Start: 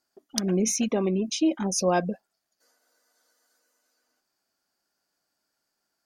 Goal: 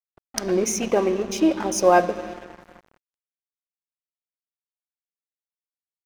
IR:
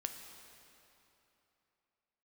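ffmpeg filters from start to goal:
-filter_complex "[0:a]aeval=exprs='val(0)+0.00224*(sin(2*PI*50*n/s)+sin(2*PI*2*50*n/s)/2+sin(2*PI*3*50*n/s)/3+sin(2*PI*4*50*n/s)/4+sin(2*PI*5*50*n/s)/5)':channel_layout=same,asplit=2[link_01][link_02];[link_02]acrossover=split=200 3900:gain=0.2 1 0.0794[link_03][link_04][link_05];[link_03][link_04][link_05]amix=inputs=3:normalize=0[link_06];[1:a]atrim=start_sample=2205[link_07];[link_06][link_07]afir=irnorm=-1:irlink=0,volume=2.5dB[link_08];[link_01][link_08]amix=inputs=2:normalize=0,aeval=exprs='sgn(val(0))*max(abs(val(0))-0.0119,0)':channel_layout=same,volume=3dB"

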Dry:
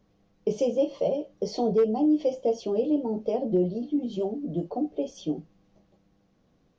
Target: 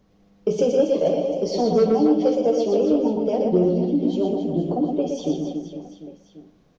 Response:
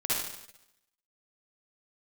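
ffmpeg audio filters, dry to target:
-filter_complex "[0:a]aecho=1:1:120|276|478.8|742.4|1085:0.631|0.398|0.251|0.158|0.1,acontrast=77,asplit=2[link_01][link_02];[1:a]atrim=start_sample=2205,asetrate=61740,aresample=44100[link_03];[link_02][link_03]afir=irnorm=-1:irlink=0,volume=-15dB[link_04];[link_01][link_04]amix=inputs=2:normalize=0,volume=-3dB"

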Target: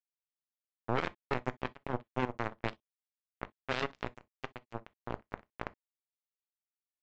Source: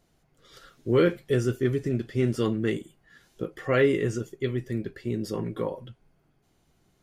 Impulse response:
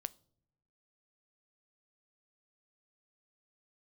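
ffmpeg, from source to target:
-filter_complex "[0:a]highshelf=frequency=2100:width_type=q:width=1.5:gain=-11.5,alimiter=limit=-17.5dB:level=0:latency=1:release=229,aresample=16000,acrusher=bits=2:mix=0:aa=0.5,aresample=44100[link_01];[1:a]atrim=start_sample=2205,atrim=end_sample=3087[link_02];[link_01][link_02]afir=irnorm=-1:irlink=0,volume=9dB"

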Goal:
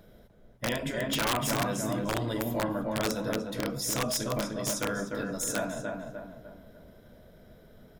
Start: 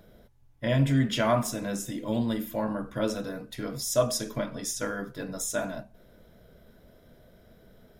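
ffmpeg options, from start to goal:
ffmpeg -i in.wav -filter_complex "[0:a]asplit=2[link_01][link_02];[link_02]adelay=299,lowpass=frequency=1900:poles=1,volume=-3.5dB,asplit=2[link_03][link_04];[link_04]adelay=299,lowpass=frequency=1900:poles=1,volume=0.44,asplit=2[link_05][link_06];[link_06]adelay=299,lowpass=frequency=1900:poles=1,volume=0.44,asplit=2[link_07][link_08];[link_08]adelay=299,lowpass=frequency=1900:poles=1,volume=0.44,asplit=2[link_09][link_10];[link_10]adelay=299,lowpass=frequency=1900:poles=1,volume=0.44,asplit=2[link_11][link_12];[link_12]adelay=299,lowpass=frequency=1900:poles=1,volume=0.44[link_13];[link_01][link_03][link_05][link_07][link_09][link_11][link_13]amix=inputs=7:normalize=0,afftfilt=real='re*lt(hypot(re,im),0.355)':imag='im*lt(hypot(re,im),0.355)':win_size=1024:overlap=0.75,aeval=exprs='(mod(10.6*val(0)+1,2)-1)/10.6':channel_layout=same" out.wav

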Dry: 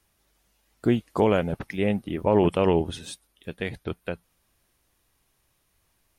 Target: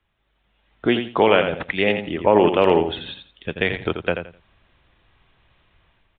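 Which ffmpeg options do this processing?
ffmpeg -i in.wav -filter_complex "[0:a]asplit=3[link_01][link_02][link_03];[link_01]afade=type=out:start_time=0.85:duration=0.02[link_04];[link_02]highshelf=frequency=2000:gain=8,afade=type=in:start_time=0.85:duration=0.02,afade=type=out:start_time=2.02:duration=0.02[link_05];[link_03]afade=type=in:start_time=2.02:duration=0.02[link_06];[link_04][link_05][link_06]amix=inputs=3:normalize=0,aecho=1:1:85|170|255:0.398|0.0836|0.0176,acrossover=split=200[link_07][link_08];[link_07]acompressor=threshold=-44dB:ratio=5[link_09];[link_08]lowshelf=frequency=400:gain=-7[link_10];[link_09][link_10]amix=inputs=2:normalize=0,aresample=8000,aresample=44100,dynaudnorm=framelen=130:gausssize=9:maxgain=12.5dB" -ar 48000 -c:a aac -b:a 160k out.aac

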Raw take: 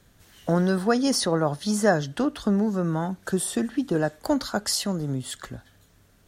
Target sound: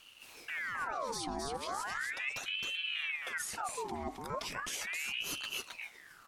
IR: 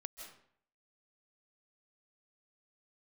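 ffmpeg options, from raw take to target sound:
-filter_complex "[0:a]acrossover=split=270[link_01][link_02];[link_02]acompressor=threshold=-27dB:ratio=8[link_03];[link_01][link_03]amix=inputs=2:normalize=0,alimiter=level_in=2dB:limit=-24dB:level=0:latency=1:release=66,volume=-2dB,areverse,acompressor=threshold=-37dB:ratio=6,areverse,asetrate=41625,aresample=44100,atempo=1.05946,asplit=2[link_04][link_05];[link_05]aecho=0:1:266:0.631[link_06];[link_04][link_06]amix=inputs=2:normalize=0,aeval=exprs='val(0)*sin(2*PI*1700*n/s+1700*0.7/0.37*sin(2*PI*0.37*n/s))':channel_layout=same,volume=3dB"

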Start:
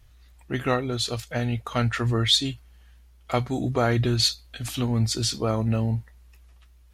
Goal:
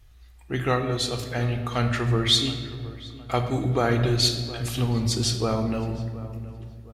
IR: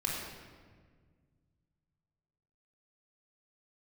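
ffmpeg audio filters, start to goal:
-filter_complex "[0:a]asplit=2[link_01][link_02];[link_02]adelay=718,lowpass=frequency=1600:poles=1,volume=-16dB,asplit=2[link_03][link_04];[link_04]adelay=718,lowpass=frequency=1600:poles=1,volume=0.43,asplit=2[link_05][link_06];[link_06]adelay=718,lowpass=frequency=1600:poles=1,volume=0.43,asplit=2[link_07][link_08];[link_08]adelay=718,lowpass=frequency=1600:poles=1,volume=0.43[link_09];[link_01][link_03][link_05][link_07][link_09]amix=inputs=5:normalize=0,asplit=2[link_10][link_11];[1:a]atrim=start_sample=2205[link_12];[link_11][link_12]afir=irnorm=-1:irlink=0,volume=-6.5dB[link_13];[link_10][link_13]amix=inputs=2:normalize=0,volume=-3.5dB"

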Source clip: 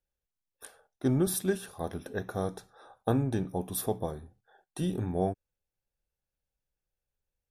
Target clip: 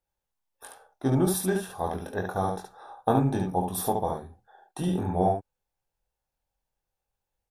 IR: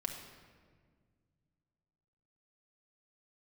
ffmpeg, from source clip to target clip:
-filter_complex "[0:a]equalizer=frequency=860:width_type=o:width=0.75:gain=10.5,asplit=2[link_01][link_02];[link_02]aecho=0:1:22|71:0.596|0.631[link_03];[link_01][link_03]amix=inputs=2:normalize=0"

